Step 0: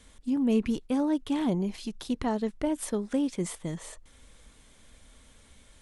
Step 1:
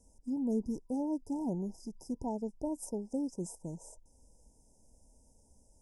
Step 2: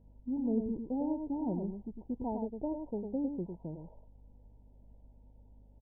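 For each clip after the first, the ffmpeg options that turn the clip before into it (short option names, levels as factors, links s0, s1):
-af "afftfilt=real='re*(1-between(b*sr/4096,990,4900))':imag='im*(1-between(b*sr/4096,990,4900))':win_size=4096:overlap=0.75,volume=0.422"
-af "aresample=8000,aresample=44100,aeval=exprs='val(0)+0.00112*(sin(2*PI*50*n/s)+sin(2*PI*2*50*n/s)/2+sin(2*PI*3*50*n/s)/3+sin(2*PI*4*50*n/s)/4+sin(2*PI*5*50*n/s)/5)':c=same,aecho=1:1:103:0.501"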